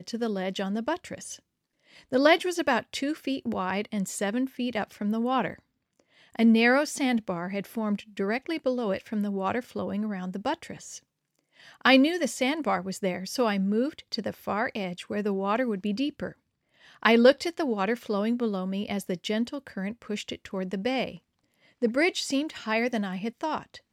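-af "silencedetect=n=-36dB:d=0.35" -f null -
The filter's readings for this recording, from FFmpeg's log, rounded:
silence_start: 1.35
silence_end: 2.12 | silence_duration: 0.78
silence_start: 5.54
silence_end: 6.35 | silence_duration: 0.81
silence_start: 10.97
silence_end: 11.81 | silence_duration: 0.84
silence_start: 16.30
silence_end: 17.03 | silence_duration: 0.73
silence_start: 21.15
silence_end: 21.82 | silence_duration: 0.67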